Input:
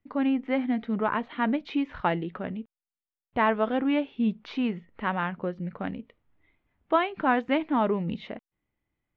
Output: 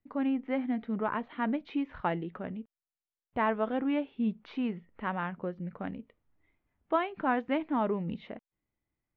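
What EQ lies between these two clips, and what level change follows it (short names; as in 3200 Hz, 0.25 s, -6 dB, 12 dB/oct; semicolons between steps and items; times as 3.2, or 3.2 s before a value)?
LPF 2500 Hz 6 dB/oct; -4.5 dB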